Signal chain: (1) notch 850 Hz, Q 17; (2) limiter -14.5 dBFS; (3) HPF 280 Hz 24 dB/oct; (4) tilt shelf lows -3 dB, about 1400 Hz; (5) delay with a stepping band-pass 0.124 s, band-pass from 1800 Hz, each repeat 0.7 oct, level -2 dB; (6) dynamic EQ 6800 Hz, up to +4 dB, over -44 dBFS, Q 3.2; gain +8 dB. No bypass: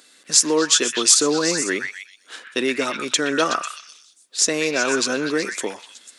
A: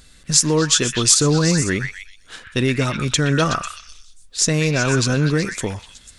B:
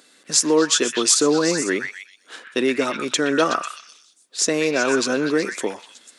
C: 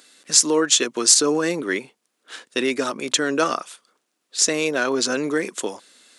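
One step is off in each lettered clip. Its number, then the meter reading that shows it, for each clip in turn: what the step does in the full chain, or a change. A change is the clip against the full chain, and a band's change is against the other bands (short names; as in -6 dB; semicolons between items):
3, 125 Hz band +21.5 dB; 4, 8 kHz band -4.5 dB; 5, momentary loudness spread change -3 LU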